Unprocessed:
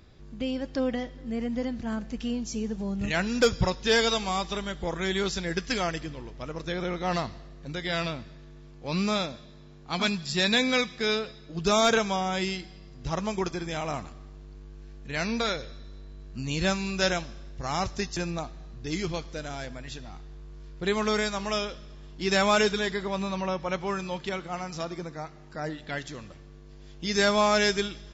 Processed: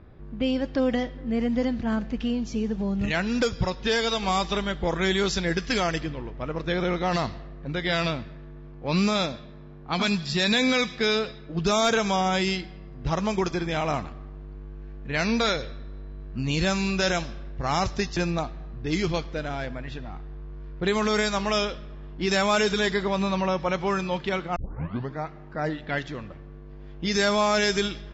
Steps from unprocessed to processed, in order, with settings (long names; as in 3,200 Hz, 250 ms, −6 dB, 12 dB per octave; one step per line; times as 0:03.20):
0:02.10–0:04.23: downward compressor 3 to 1, threshold −28 dBFS, peak gain reduction 9 dB
low-pass that shuts in the quiet parts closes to 1,500 Hz, open at −21.5 dBFS
brickwall limiter −19 dBFS, peak gain reduction 6 dB
0:24.56: tape start 0.61 s
level +5.5 dB